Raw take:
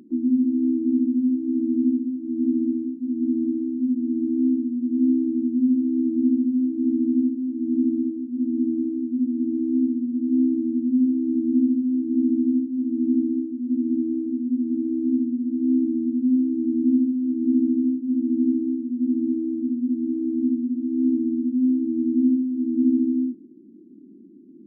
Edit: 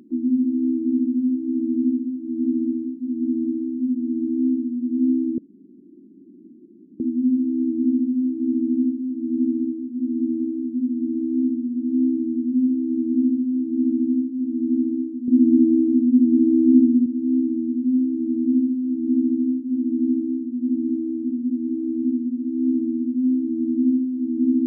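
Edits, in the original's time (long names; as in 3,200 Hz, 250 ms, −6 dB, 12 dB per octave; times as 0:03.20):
0:05.38: splice in room tone 1.62 s
0:13.66–0:15.44: clip gain +8 dB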